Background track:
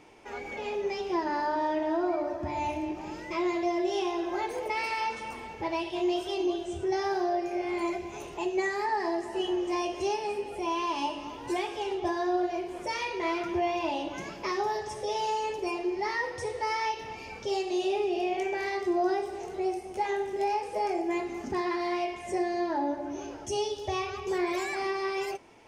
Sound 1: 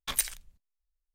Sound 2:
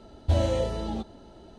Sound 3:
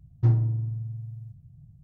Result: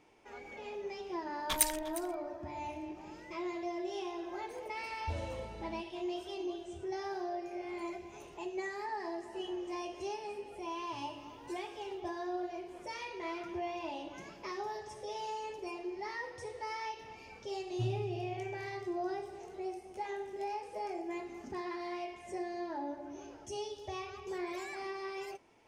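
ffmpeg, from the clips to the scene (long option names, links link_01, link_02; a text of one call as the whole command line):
ffmpeg -i bed.wav -i cue0.wav -i cue1.wav -i cue2.wav -filter_complex "[3:a]asplit=2[link_01][link_02];[0:a]volume=-10dB[link_03];[1:a]aecho=1:1:354:0.15[link_04];[link_01]aderivative[link_05];[link_04]atrim=end=1.14,asetpts=PTS-STARTPTS,volume=-1dB,afade=type=in:duration=0.004:curve=hsin,afade=type=out:start_time=1.136:duration=0.004:curve=hsin,adelay=1420[link_06];[2:a]atrim=end=1.58,asetpts=PTS-STARTPTS,volume=-16dB,afade=type=in:duration=0.004:curve=hsin,afade=type=out:start_time=1.576:duration=0.004:curve=hsin,adelay=4790[link_07];[link_05]atrim=end=1.83,asetpts=PTS-STARTPTS,volume=-2.5dB,afade=type=in:duration=0.004:curve=hsin,afade=type=out:start_time=1.826:duration=0.004:curve=hsin,adelay=10690[link_08];[link_02]atrim=end=1.83,asetpts=PTS-STARTPTS,volume=-15.5dB,afade=type=in:duration=0.004:curve=hsin,afade=type=out:start_time=1.826:duration=0.004:curve=hsin,adelay=17560[link_09];[link_03][link_06][link_07][link_08][link_09]amix=inputs=5:normalize=0" out.wav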